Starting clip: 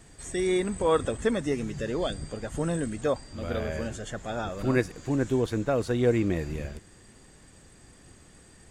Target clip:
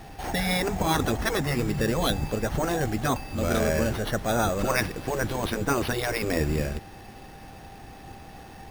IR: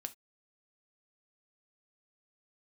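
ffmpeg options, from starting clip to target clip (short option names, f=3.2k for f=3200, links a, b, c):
-af "afftfilt=real='re*lt(hypot(re,im),0.224)':imag='im*lt(hypot(re,im),0.224)':win_size=1024:overlap=0.75,acrusher=samples=6:mix=1:aa=0.000001,aeval=exprs='val(0)+0.00126*sin(2*PI*790*n/s)':c=same,volume=8.5dB"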